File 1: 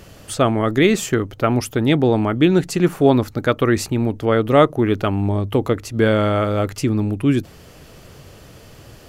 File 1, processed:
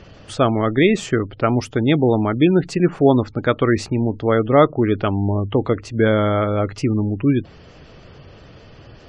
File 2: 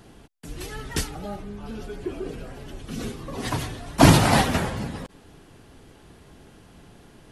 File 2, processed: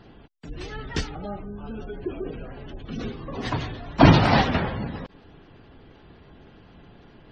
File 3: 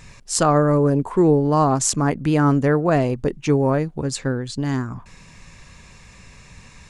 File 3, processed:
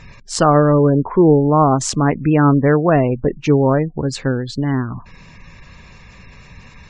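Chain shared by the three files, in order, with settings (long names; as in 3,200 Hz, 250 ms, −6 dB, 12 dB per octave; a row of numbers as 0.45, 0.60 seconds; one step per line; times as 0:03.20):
low-pass filter 5,300 Hz 12 dB per octave
gate on every frequency bin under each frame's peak −30 dB strong
normalise the peak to −1.5 dBFS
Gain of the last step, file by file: 0.0, 0.0, +4.5 decibels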